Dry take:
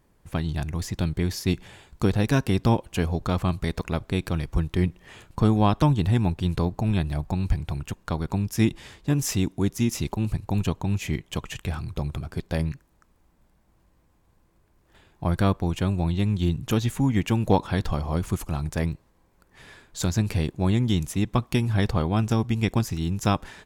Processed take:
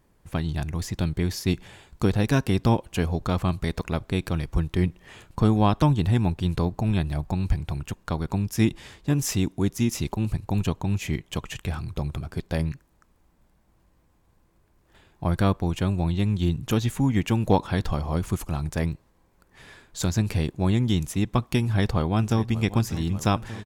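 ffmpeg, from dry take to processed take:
ffmpeg -i in.wav -filter_complex "[0:a]asplit=2[link_01][link_02];[link_02]afade=type=in:start_time=21.6:duration=0.01,afade=type=out:start_time=22.58:duration=0.01,aecho=0:1:590|1180|1770|2360|2950|3540|4130|4720|5310|5900|6490|7080:0.16788|0.142698|0.121294|0.1031|0.0876346|0.0744894|0.063316|0.0538186|0.0457458|0.0388839|0.0330514|0.0280937[link_03];[link_01][link_03]amix=inputs=2:normalize=0" out.wav

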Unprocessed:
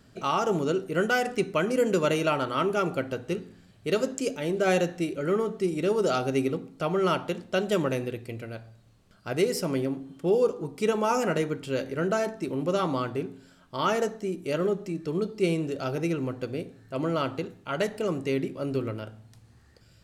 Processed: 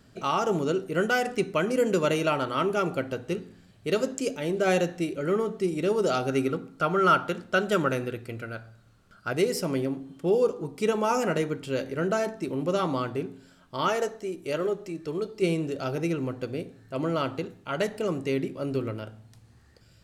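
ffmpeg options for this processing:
ffmpeg -i in.wav -filter_complex "[0:a]asettb=1/sr,asplit=3[link_01][link_02][link_03];[link_01]atrim=end=6.294[link_04];[link_02]atrim=start=6.29:end=9.31,asetpts=PTS-STARTPTS,afade=type=in:duration=0.004:curve=qsin,afade=type=out:start_time=3.016:duration=0.004:curve=qsin,equalizer=frequency=1400:width_type=o:width=0.32:gain=12[link_05];[link_03]atrim=start=9.306[link_06];[link_04][link_05]acrossfade=duration=0.004:curve1=hsin:curve2=qsin[link_07];[link_07][link_06]acrossfade=duration=0.004:curve1=qsin:curve2=hsin,asettb=1/sr,asplit=3[link_08][link_09][link_10];[link_08]atrim=end=13.884[link_11];[link_09]atrim=start=13.88:end=15.42,asetpts=PTS-STARTPTS,afade=type=in:duration=0.004:curve=qsin,afade=type=out:start_time=1.536:duration=0.004:curve=qsin,equalizer=frequency=200:width_type=o:width=0.77:gain=-9[link_12];[link_10]atrim=start=15.416[link_13];[link_11][link_12]acrossfade=duration=0.004:curve1=hsin:curve2=qsin[link_14];[link_14][link_13]acrossfade=duration=0.004:curve1=qsin:curve2=hsin" out.wav

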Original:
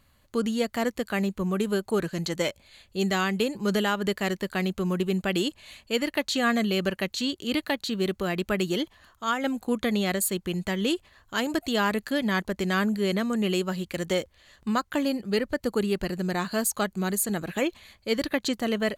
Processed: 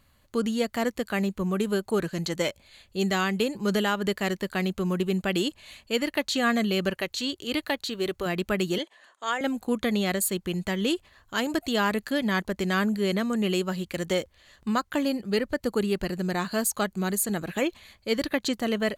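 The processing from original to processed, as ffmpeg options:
ffmpeg -i in.wav -filter_complex "[0:a]asettb=1/sr,asplit=3[link_01][link_02][link_03];[link_01]atrim=end=6.934[link_04];[link_02]atrim=start=6.93:end=8.26,asetpts=PTS-STARTPTS,afade=type=in:duration=0.004:curve=qsin,afade=type=out:start_time=1.326:duration=0.004:curve=qsin,equalizer=frequency=200:width=2.7:gain=-9.5[link_05];[link_03]atrim=start=8.256[link_06];[link_04][link_05]acrossfade=duration=0.004:curve1=hsin:curve2=qsin[link_07];[link_07][link_06]acrossfade=duration=0.004:curve1=qsin:curve2=hsin,asettb=1/sr,asplit=3[link_08][link_09][link_10];[link_08]atrim=end=8.784[link_11];[link_09]atrim=start=8.78:end=9.41,asetpts=PTS-STARTPTS,afade=type=in:duration=0.004:curve=qsin,afade=type=out:start_time=0.626:duration=0.004:curve=qsin,highpass=frequency=310:width=0.5412,highpass=frequency=310:width=1.3066,equalizer=frequency=320:width_type=q:width=4:gain=-5,equalizer=frequency=570:width_type=q:width=4:gain=3,equalizer=frequency=1300:width_type=q:width=4:gain=-5,equalizer=frequency=1800:width_type=q:width=4:gain=4,equalizer=frequency=5300:width_type=q:width=4:gain=-6,equalizer=frequency=8300:width_type=q:width=4:gain=4,lowpass=frequency=9800:width=0.5412,lowpass=frequency=9800:width=1.3066[link_12];[link_10]atrim=start=9.406[link_13];[link_11][link_12]acrossfade=duration=0.004:curve1=hsin:curve2=qsin[link_14];[link_14][link_13]acrossfade=duration=0.004:curve1=qsin:curve2=hsin" out.wav

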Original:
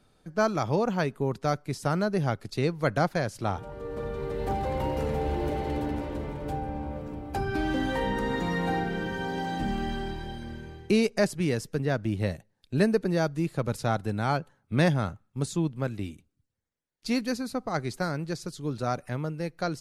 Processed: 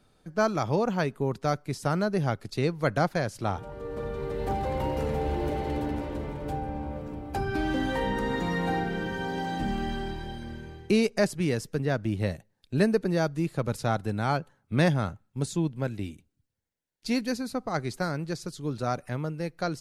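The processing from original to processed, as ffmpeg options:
ffmpeg -i in.wav -filter_complex "[0:a]asettb=1/sr,asplit=3[link_01][link_02][link_03];[link_01]atrim=end=15.114[link_04];[link_02]atrim=start=15.11:end=17.47,asetpts=PTS-STARTPTS,afade=type=in:duration=0.004:curve=qsin,afade=type=out:start_time=2.356:duration=0.004:curve=qsin,bandreject=frequency=1200:width=8[link_05];[link_03]atrim=start=17.466[link_06];[link_04][link_05]acrossfade=duration=0.004:curve1=hsin:curve2=qsin[link_07];[link_07][link_06]acrossfade=duration=0.004:curve1=qsin:curve2=hsin" out.wav

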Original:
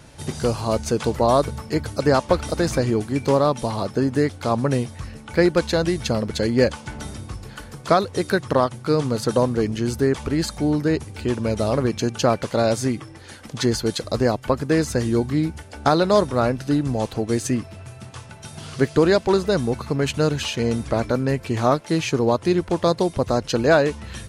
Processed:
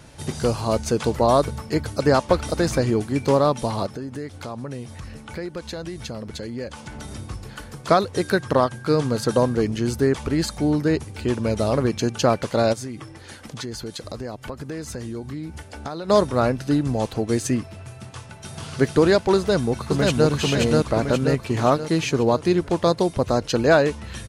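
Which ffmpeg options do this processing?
ffmpeg -i in.wav -filter_complex "[0:a]asettb=1/sr,asplit=3[link_01][link_02][link_03];[link_01]atrim=end=3.864[link_04];[link_02]atrim=start=3.86:end=7.11,asetpts=PTS-STARTPTS,afade=type=in:duration=0.004:curve=qsin,afade=type=out:start_time=3.246:duration=0.004:curve=qsin,acompressor=threshold=-32dB:ratio=3:attack=3.2:release=140:knee=1:detection=peak[link_05];[link_03]atrim=start=7.106[link_06];[link_04][link_05]acrossfade=duration=0.004:curve1=hsin:curve2=qsin[link_07];[link_07][link_06]acrossfade=duration=0.004:curve1=qsin:curve2=hsin,asettb=1/sr,asplit=3[link_08][link_09][link_10];[link_08]atrim=end=8.154[link_11];[link_09]atrim=start=8.15:end=9.54,asetpts=PTS-STARTPTS,afade=type=in:duration=0.004:curve=qsin,afade=type=out:start_time=1.386:duration=0.004:curve=qsin,aeval=exprs='val(0)+0.00631*sin(2*PI*1600*n/s)':channel_layout=same[link_12];[link_10]atrim=start=9.536[link_13];[link_11][link_12]acrossfade=duration=0.004:curve1=hsin:curve2=qsin[link_14];[link_14][link_13]acrossfade=duration=0.004:curve1=qsin:curve2=hsin,asplit=3[link_15][link_16][link_17];[link_15]afade=type=out:start_time=12.72:duration=0.02[link_18];[link_16]acompressor=threshold=-30dB:ratio=4:attack=3.2:release=140:knee=1:detection=peak,afade=type=in:start_time=12.72:duration=0.02,afade=type=out:start_time=16.08:duration=0.02[link_19];[link_17]afade=type=in:start_time=16.08:duration=0.02[link_20];[link_18][link_19][link_20]amix=inputs=3:normalize=0,asplit=2[link_21][link_22];[link_22]afade=type=in:start_time=18.01:duration=0.01,afade=type=out:start_time=18.71:duration=0.01,aecho=0:1:440|880|1320|1760|2200|2640|3080|3520|3960|4400|4840|5280:0.794328|0.595746|0.44681|0.335107|0.25133|0.188498|0.141373|0.10603|0.0795225|0.0596419|0.0447314|0.0335486[link_23];[link_21][link_23]amix=inputs=2:normalize=0,asplit=2[link_24][link_25];[link_25]afade=type=in:start_time=19.37:duration=0.01,afade=type=out:start_time=20.29:duration=0.01,aecho=0:1:530|1060|1590|2120|2650|3180|3710:0.944061|0.47203|0.236015|0.118008|0.0590038|0.0295019|0.014751[link_26];[link_24][link_26]amix=inputs=2:normalize=0" out.wav

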